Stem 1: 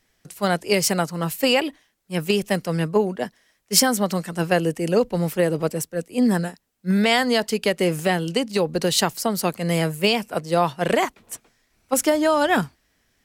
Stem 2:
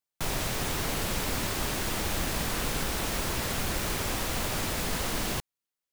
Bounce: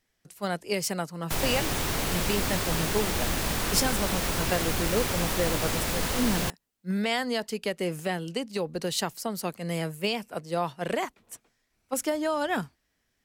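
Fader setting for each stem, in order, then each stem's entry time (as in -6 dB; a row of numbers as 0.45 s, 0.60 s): -9.0 dB, +2.0 dB; 0.00 s, 1.10 s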